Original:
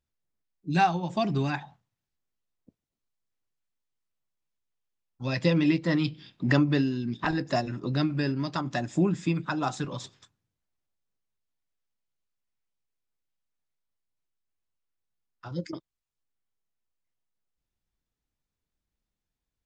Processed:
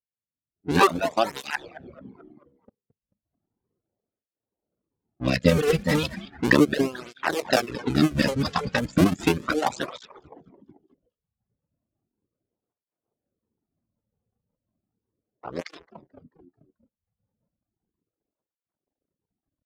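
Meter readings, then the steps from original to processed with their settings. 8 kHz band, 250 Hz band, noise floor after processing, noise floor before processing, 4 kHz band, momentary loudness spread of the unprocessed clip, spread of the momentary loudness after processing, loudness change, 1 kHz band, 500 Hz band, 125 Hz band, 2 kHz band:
n/a, +2.5 dB, under -85 dBFS, under -85 dBFS, +6.5 dB, 13 LU, 15 LU, +4.0 dB, +3.5 dB, +7.5 dB, 0.0 dB, +6.5 dB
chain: cycle switcher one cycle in 2, muted; frequency-shifting echo 0.219 s, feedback 50%, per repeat -110 Hz, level -11 dB; reverb removal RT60 0.94 s; low-pass opened by the level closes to 690 Hz, open at -28 dBFS; low shelf 200 Hz -7 dB; AGC gain up to 14 dB; rotary speaker horn 0.75 Hz, later 5.5 Hz, at 7.76; spectral noise reduction 10 dB; tape flanging out of phase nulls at 0.35 Hz, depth 3.3 ms; gain +3.5 dB

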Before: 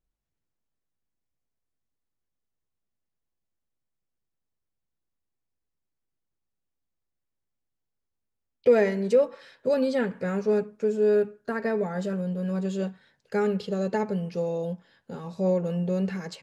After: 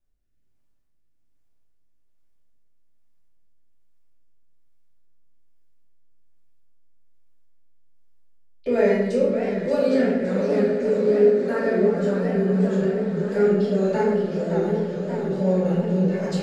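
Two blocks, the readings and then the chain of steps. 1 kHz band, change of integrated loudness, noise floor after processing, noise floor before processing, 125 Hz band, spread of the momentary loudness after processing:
+3.5 dB, +5.0 dB, -60 dBFS, -83 dBFS, +6.0 dB, 5 LU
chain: in parallel at 0 dB: compressor, threshold -32 dBFS, peak gain reduction 16.5 dB; on the sum: rotary speaker horn 1.2 Hz; diffused feedback echo 0.699 s, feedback 71%, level -10 dB; shoebox room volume 300 m³, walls mixed, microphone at 2.6 m; warbling echo 0.573 s, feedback 73%, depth 210 cents, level -9.5 dB; gain -6 dB

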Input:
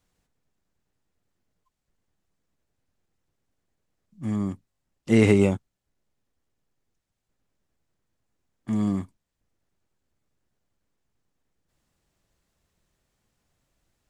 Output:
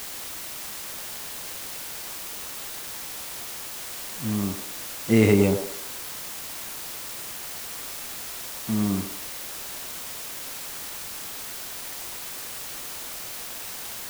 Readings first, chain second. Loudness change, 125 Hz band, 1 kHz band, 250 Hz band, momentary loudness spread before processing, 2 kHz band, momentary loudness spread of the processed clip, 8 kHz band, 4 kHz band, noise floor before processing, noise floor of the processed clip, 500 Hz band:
-5.5 dB, 0.0 dB, +6.5 dB, 0.0 dB, 16 LU, +3.5 dB, 8 LU, +18.5 dB, +13.5 dB, -81 dBFS, -36 dBFS, +1.0 dB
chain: requantised 6-bit, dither triangular; band-limited delay 0.105 s, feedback 34%, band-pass 670 Hz, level -5 dB

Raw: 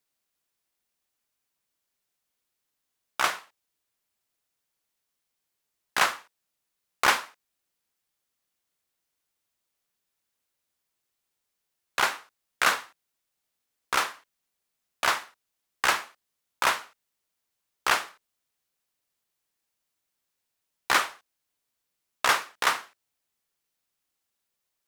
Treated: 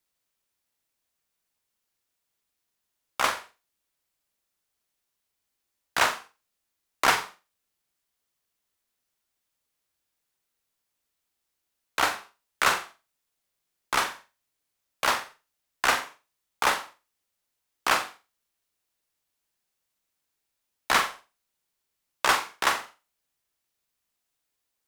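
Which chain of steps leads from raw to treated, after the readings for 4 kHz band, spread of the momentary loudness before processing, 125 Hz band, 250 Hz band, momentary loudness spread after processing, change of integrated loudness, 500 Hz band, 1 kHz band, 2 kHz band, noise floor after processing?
0.0 dB, 10 LU, +3.5 dB, +3.0 dB, 13 LU, +0.5 dB, +2.0 dB, +1.0 dB, 0.0 dB, -81 dBFS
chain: frequency shift -89 Hz; flutter echo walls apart 7.5 m, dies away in 0.28 s

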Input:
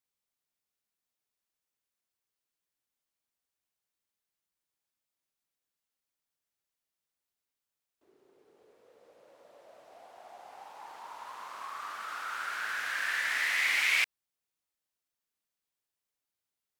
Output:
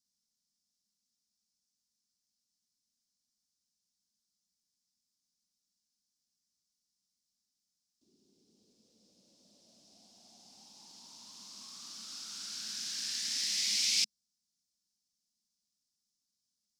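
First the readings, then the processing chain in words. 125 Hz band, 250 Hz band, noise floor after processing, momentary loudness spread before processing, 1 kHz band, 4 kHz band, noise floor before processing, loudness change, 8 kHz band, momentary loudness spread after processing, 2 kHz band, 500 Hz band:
n/a, +4.0 dB, under -85 dBFS, 22 LU, -22.5 dB, +4.5 dB, under -85 dBFS, -2.5 dB, +8.5 dB, 21 LU, -17.5 dB, -16.5 dB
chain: EQ curve 140 Hz 0 dB, 210 Hz +12 dB, 460 Hz -17 dB, 660 Hz -18 dB, 1300 Hz -24 dB, 1900 Hz -22 dB, 5200 Hz +14 dB, 14000 Hz -7 dB

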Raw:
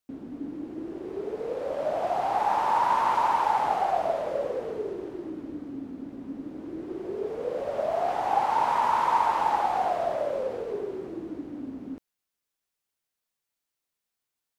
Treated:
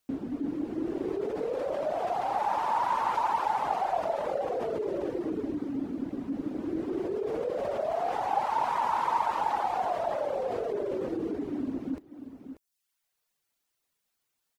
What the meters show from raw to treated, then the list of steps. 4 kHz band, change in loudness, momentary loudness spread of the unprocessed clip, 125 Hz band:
-3.0 dB, -2.5 dB, 15 LU, +1.5 dB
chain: echo 0.587 s -11 dB; in parallel at +0.5 dB: negative-ratio compressor -35 dBFS, ratio -1; on the sum: reverb removal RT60 0.71 s; gain -3.5 dB

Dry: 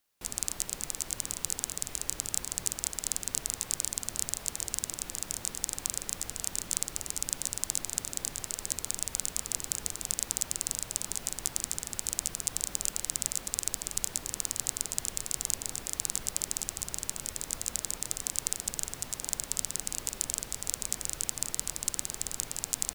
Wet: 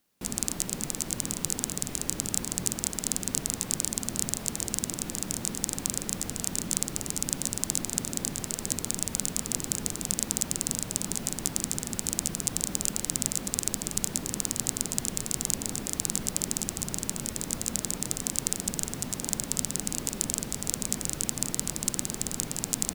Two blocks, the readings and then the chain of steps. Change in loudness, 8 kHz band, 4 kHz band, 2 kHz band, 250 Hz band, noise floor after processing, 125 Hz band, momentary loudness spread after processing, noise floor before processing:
+3.0 dB, +2.5 dB, +2.5 dB, +3.0 dB, +14.0 dB, -40 dBFS, +10.0 dB, 3 LU, -46 dBFS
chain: bell 210 Hz +13 dB 1.8 oct; gain +2.5 dB

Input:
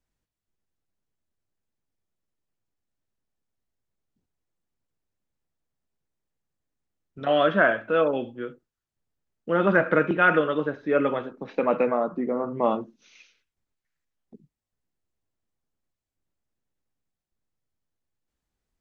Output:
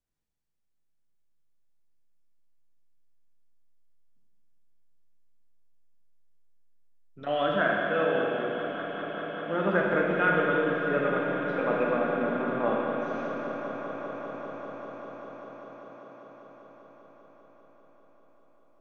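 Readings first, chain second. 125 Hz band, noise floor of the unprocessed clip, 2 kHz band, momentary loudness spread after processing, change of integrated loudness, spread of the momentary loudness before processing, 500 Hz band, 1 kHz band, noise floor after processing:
-2.0 dB, under -85 dBFS, -2.5 dB, 17 LU, -4.5 dB, 13 LU, -3.0 dB, -2.5 dB, -69 dBFS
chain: swelling echo 0.197 s, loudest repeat 5, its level -14 dB; Schroeder reverb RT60 3.2 s, DRR -1.5 dB; gain -7.5 dB

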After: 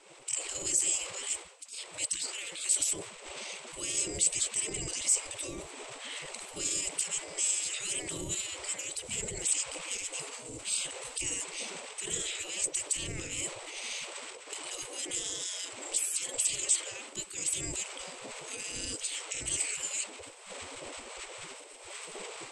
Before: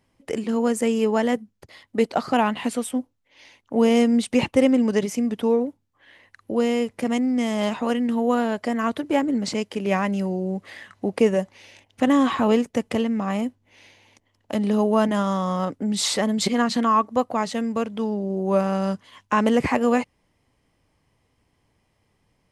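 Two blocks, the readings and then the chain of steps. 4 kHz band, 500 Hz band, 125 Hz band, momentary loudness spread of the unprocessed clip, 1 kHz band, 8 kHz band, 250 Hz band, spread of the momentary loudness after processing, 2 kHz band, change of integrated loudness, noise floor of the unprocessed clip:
-3.0 dB, -22.5 dB, -17.0 dB, 9 LU, -22.0 dB, +9.0 dB, -28.0 dB, 15 LU, -8.5 dB, -10.0 dB, -69 dBFS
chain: wind noise 200 Hz -20 dBFS; recorder AGC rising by 23 dB/s; notches 60/120/180/240/300/360/420 Hz; spectral gate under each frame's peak -25 dB weak; transient shaper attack -3 dB, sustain +9 dB; limiter -24.5 dBFS, peak gain reduction 10.5 dB; synth low-pass 8000 Hz, resonance Q 16; band shelf 1100 Hz -13.5 dB; gain -3 dB

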